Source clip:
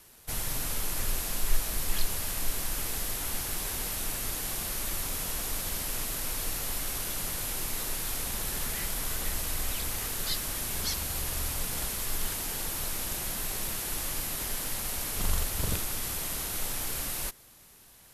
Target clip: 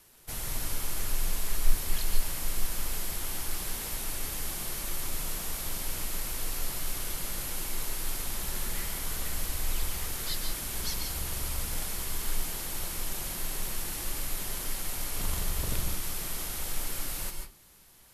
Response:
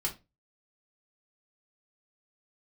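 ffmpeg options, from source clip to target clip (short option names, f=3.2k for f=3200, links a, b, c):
-filter_complex "[0:a]asplit=2[a][b];[1:a]atrim=start_sample=2205,adelay=140[c];[b][c]afir=irnorm=-1:irlink=0,volume=-8dB[d];[a][d]amix=inputs=2:normalize=0,volume=-3.5dB"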